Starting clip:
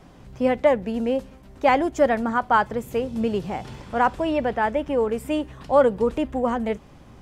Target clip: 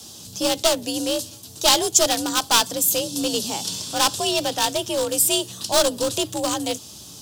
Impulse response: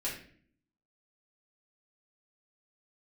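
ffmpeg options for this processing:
-af "afreqshift=56,aeval=exprs='clip(val(0),-1,0.112)':channel_layout=same,aexciter=amount=13.1:drive=8.5:freq=3300,volume=-1.5dB"

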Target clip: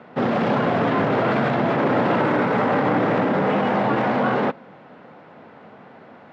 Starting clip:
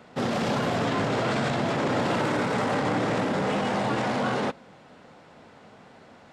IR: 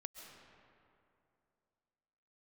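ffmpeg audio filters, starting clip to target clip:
-af "highpass=130,lowpass=2200,volume=6.5dB"

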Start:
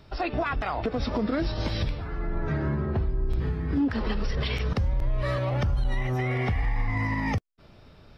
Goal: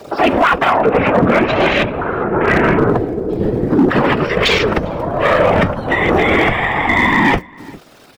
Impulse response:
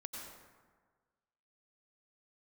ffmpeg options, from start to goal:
-filter_complex "[0:a]aeval=exprs='val(0)+0.5*0.00794*sgn(val(0))':channel_layout=same,highpass=260,afwtdn=0.0112,asettb=1/sr,asplit=3[link_01][link_02][link_03];[link_01]atrim=end=0.724[link_04];[link_02]atrim=start=0.72:end=2.89,asetpts=PTS-STARTPTS,afade=type=in:duration=0.004:curve=qsin,afade=type=out:start_time=2.166:duration=0.004:curve=qsin,highshelf=frequency=3500:width_type=q:width=3:gain=-12.5[link_05];[link_03]atrim=start=2.886[link_06];[link_04][link_05]acrossfade=duration=0.004:curve1=hsin:curve2=qsin[link_07];[link_07][link_06]acrossfade=duration=0.004:curve1=qsin:curve2=hsin,apsyclip=28dB,afftfilt=real='hypot(re,im)*cos(2*PI*random(0))':imag='hypot(re,im)*sin(2*PI*random(1))':win_size=512:overlap=0.75,flanger=delay=1.6:depth=8.5:regen=-71:speed=0.45:shape=sinusoidal,asoftclip=type=hard:threshold=-8.5dB,asplit=2[link_08][link_09];[link_09]adelay=402.3,volume=-25dB,highshelf=frequency=4000:gain=-9.05[link_10];[link_08][link_10]amix=inputs=2:normalize=0,volume=3.5dB"

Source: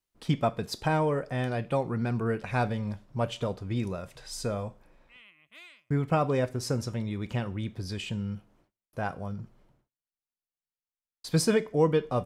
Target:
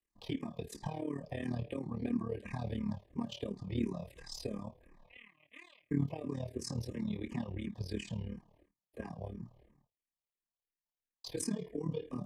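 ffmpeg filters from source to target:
ffmpeg -i in.wav -filter_complex "[0:a]highshelf=frequency=3000:gain=-8.5,acrossover=split=170|630|2800[link_01][link_02][link_03][link_04];[link_01]acompressor=threshold=-45dB:ratio=6[link_05];[link_05][link_02][link_03][link_04]amix=inputs=4:normalize=0,alimiter=limit=-23.5dB:level=0:latency=1:release=31,acrossover=split=330|3000[link_06][link_07][link_08];[link_07]acompressor=threshold=-45dB:ratio=5[link_09];[link_06][link_09][link_08]amix=inputs=3:normalize=0,flanger=delay=8.7:depth=9.3:regen=34:speed=0.38:shape=triangular,tremolo=f=37:d=0.857,asuperstop=centerf=1400:order=20:qfactor=4.2,asplit=2[link_10][link_11];[link_11]afreqshift=-2.9[link_12];[link_10][link_12]amix=inputs=2:normalize=1,volume=9.5dB" out.wav

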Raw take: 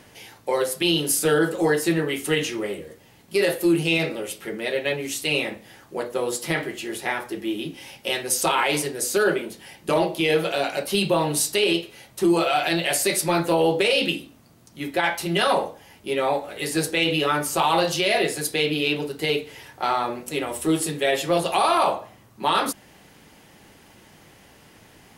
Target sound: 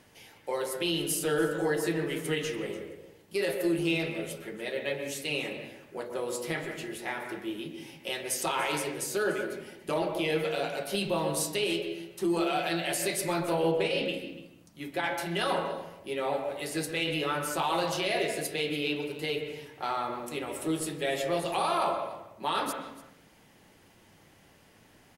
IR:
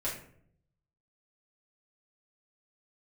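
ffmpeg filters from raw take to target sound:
-filter_complex "[0:a]asettb=1/sr,asplit=3[link_01][link_02][link_03];[link_01]atrim=end=13.714[link_04];[link_02]atrim=start=13.71:end=14.14,asetpts=PTS-STARTPTS,afade=type=in:duration=0.004:curve=qsin,afade=type=out:start_time=0.426:duration=0.004:curve=qsin,highshelf=frequency=4300:gain=-8[link_05];[link_03]atrim=start=14.136[link_06];[link_04][link_05]acrossfade=duration=0.004:curve1=hsin:curve2=qsin[link_07];[link_07][link_06]acrossfade=duration=0.004:curve1=qsin:curve2=hsin,aecho=1:1:290:0.126,asplit=2[link_08][link_09];[1:a]atrim=start_sample=2205,lowpass=3200,adelay=123[link_10];[link_09][link_10]afir=irnorm=-1:irlink=0,volume=-10dB[link_11];[link_08][link_11]amix=inputs=2:normalize=0,volume=-9dB"

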